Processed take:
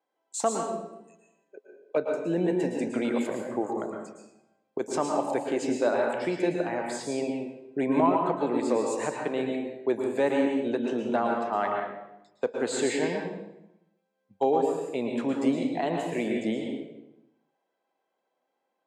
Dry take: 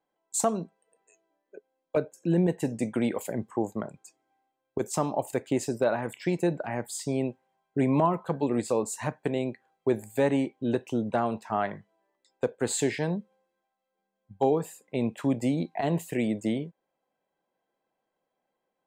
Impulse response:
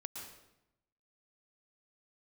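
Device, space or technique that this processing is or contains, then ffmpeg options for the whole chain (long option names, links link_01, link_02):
supermarket ceiling speaker: -filter_complex "[0:a]highpass=280,lowpass=6200[link_01];[1:a]atrim=start_sample=2205[link_02];[link_01][link_02]afir=irnorm=-1:irlink=0,volume=5dB"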